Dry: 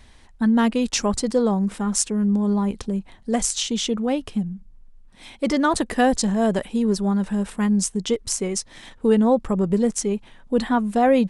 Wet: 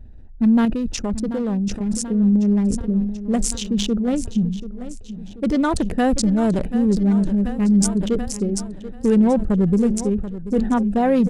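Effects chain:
adaptive Wiener filter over 41 samples
in parallel at −1.5 dB: brickwall limiter −14.5 dBFS, peak gain reduction 11 dB
0:00.65–0:02.09: on the sum: output level in coarse steps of 10 dB
low-shelf EQ 190 Hz +10 dB
on a send: repeating echo 735 ms, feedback 54%, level −14 dB
on the sum: level that may fall only so fast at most 65 dB per second
level −5.5 dB

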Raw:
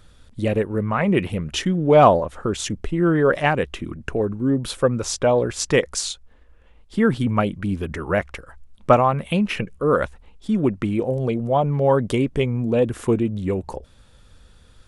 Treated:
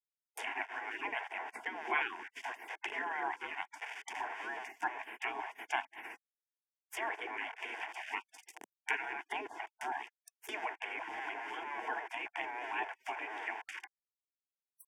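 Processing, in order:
in parallel at −0.5 dB: downward compressor 16 to 1, threshold −31 dBFS, peak gain reduction 24 dB
on the sum: centre clipping without the shift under −32 dBFS
gate on every frequency bin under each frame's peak −25 dB weak
Bessel high-pass filter 440 Hz, order 2
reversed playback
upward compression, threshold −43 dBFS
reversed playback
treble cut that deepens with the level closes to 1,700 Hz, closed at −37 dBFS
phaser with its sweep stopped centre 830 Hz, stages 8
level +6.5 dB

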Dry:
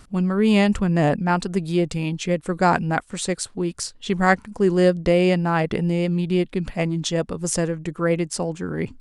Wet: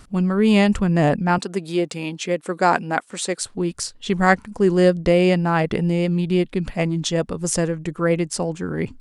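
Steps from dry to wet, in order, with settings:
0:01.38–0:03.41: high-pass filter 260 Hz 12 dB per octave
level +1.5 dB

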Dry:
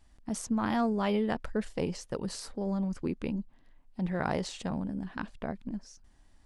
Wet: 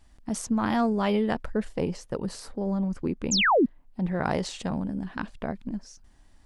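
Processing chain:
0:03.31–0:03.66: sound drawn into the spectrogram fall 210–7,700 Hz −23 dBFS
0:01.42–0:04.25: parametric band 5,800 Hz −5.5 dB 2.9 octaves
level +4 dB

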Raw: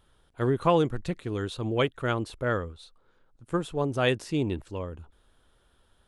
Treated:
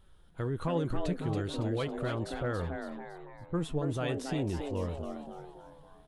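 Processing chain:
0:02.34–0:03.56: low-pass that shuts in the quiet parts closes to 590 Hz, open at −22.5 dBFS
low-shelf EQ 160 Hz +9 dB
brickwall limiter −21 dBFS, peak gain reduction 12.5 dB
flanger 0.93 Hz, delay 5.1 ms, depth 1.4 ms, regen +70%
echo with shifted repeats 279 ms, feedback 46%, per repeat +140 Hz, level −6.5 dB
level +1.5 dB

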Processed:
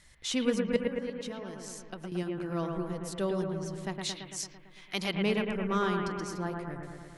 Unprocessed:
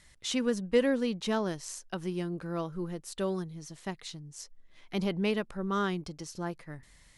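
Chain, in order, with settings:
0:00.76–0:02.12: downward compressor 6 to 1, threshold −40 dBFS, peak gain reduction 18 dB
0:03.95–0:05.15: tilt shelving filter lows −8 dB, about 720 Hz
bucket-brigade delay 112 ms, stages 2,048, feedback 69%, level −4 dB

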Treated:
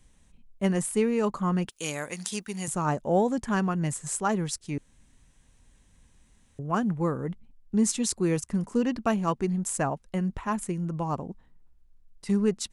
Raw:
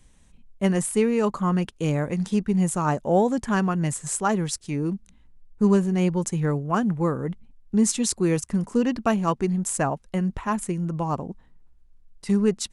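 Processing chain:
0:01.69–0:02.68: spectral tilt +4.5 dB per octave
0:04.78–0:06.59: fill with room tone
level −3.5 dB

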